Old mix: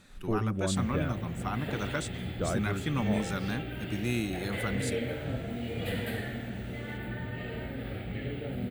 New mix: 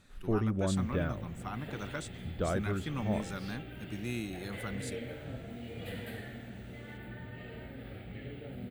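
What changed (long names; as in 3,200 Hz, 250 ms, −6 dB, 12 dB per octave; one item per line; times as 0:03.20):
speech −6.0 dB
second sound −8.0 dB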